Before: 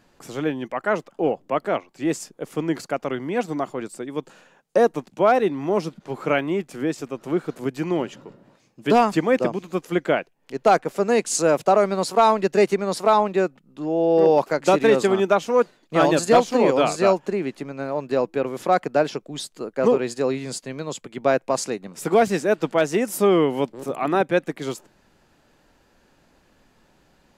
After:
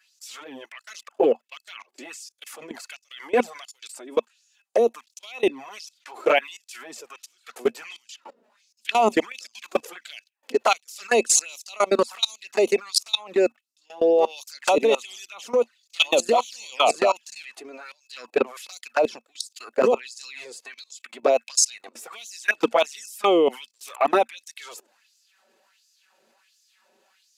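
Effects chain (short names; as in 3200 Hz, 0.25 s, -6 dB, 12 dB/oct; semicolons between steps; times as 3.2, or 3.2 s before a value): high shelf 2400 Hz +7.5 dB; envelope flanger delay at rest 5.4 ms, full sweep at -13.5 dBFS; LFO high-pass sine 1.4 Hz 420–5800 Hz; level quantiser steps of 24 dB; small resonant body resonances 230/2600 Hz, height 11 dB, ringing for 95 ms; gain +7 dB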